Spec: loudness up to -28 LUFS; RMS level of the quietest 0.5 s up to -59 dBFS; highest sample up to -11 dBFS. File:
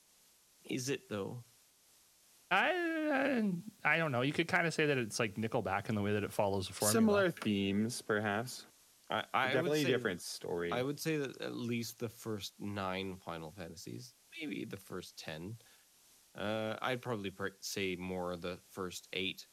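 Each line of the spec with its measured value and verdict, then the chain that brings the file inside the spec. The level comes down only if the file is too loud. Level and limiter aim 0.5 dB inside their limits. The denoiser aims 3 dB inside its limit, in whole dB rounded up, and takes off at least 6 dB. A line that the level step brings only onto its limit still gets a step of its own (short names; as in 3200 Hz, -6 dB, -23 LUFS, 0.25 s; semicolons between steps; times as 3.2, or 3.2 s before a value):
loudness -36.0 LUFS: OK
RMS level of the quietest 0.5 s -67 dBFS: OK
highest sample -15.5 dBFS: OK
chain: none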